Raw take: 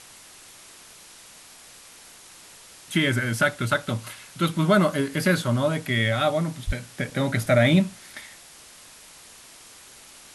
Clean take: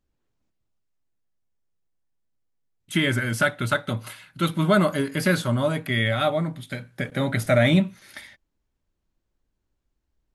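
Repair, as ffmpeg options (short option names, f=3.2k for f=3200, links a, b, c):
-filter_complex "[0:a]asplit=3[a][b][c];[a]afade=t=out:st=6.66:d=0.02[d];[b]highpass=f=140:w=0.5412,highpass=f=140:w=1.3066,afade=t=in:st=6.66:d=0.02,afade=t=out:st=6.78:d=0.02[e];[c]afade=t=in:st=6.78:d=0.02[f];[d][e][f]amix=inputs=3:normalize=0,afwtdn=0.0056"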